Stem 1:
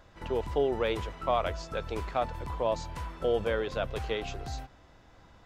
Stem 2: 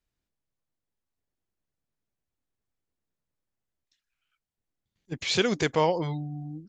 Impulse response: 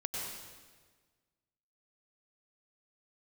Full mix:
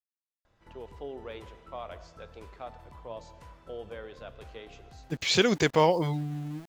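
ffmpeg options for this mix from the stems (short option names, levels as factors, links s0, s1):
-filter_complex "[0:a]flanger=delay=8.6:depth=4.8:regen=85:speed=0.39:shape=sinusoidal,adelay=450,volume=0.355,asplit=2[s0][s1];[s1]volume=0.188[s2];[1:a]aeval=exprs='val(0)*gte(abs(val(0)),0.00501)':c=same,volume=1.19,asplit=2[s3][s4];[s4]apad=whole_len=260260[s5];[s0][s5]sidechaincompress=threshold=0.0355:ratio=8:attack=16:release=390[s6];[2:a]atrim=start_sample=2205[s7];[s2][s7]afir=irnorm=-1:irlink=0[s8];[s6][s3][s8]amix=inputs=3:normalize=0"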